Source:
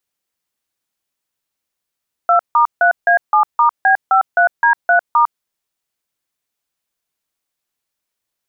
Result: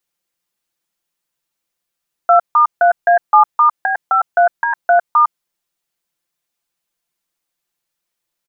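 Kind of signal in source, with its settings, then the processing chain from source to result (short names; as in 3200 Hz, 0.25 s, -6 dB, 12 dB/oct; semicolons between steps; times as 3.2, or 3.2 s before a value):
DTMF "2*3A7*B53D3*", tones 0.103 s, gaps 0.157 s, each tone -11 dBFS
comb 5.8 ms, depth 58%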